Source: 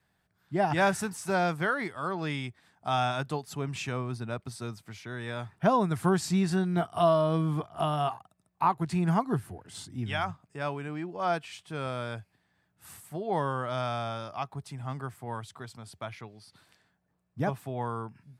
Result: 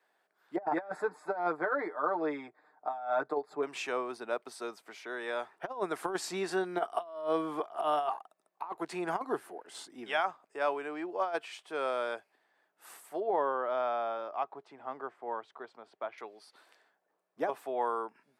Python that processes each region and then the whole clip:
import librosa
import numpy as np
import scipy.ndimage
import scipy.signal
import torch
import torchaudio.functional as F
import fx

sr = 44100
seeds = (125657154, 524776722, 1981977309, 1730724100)

y = fx.chain(x, sr, fx.moving_average(points=15),
    fx.comb(ms=6.6, depth=0.74), at=(0.56, 3.63))
y = fx.chain(y, sr, fx.quant_companded(bits=8),
    fx.spacing_loss(db_at_10k=27), at=(13.2, 16.18))
y = scipy.signal.sosfilt(scipy.signal.butter(4, 380.0, 'highpass', fs=sr, output='sos'), y)
y = fx.high_shelf(y, sr, hz=2100.0, db=-9.5)
y = fx.over_compress(y, sr, threshold_db=-32.0, ratio=-0.5)
y = F.gain(torch.from_numpy(y), 2.0).numpy()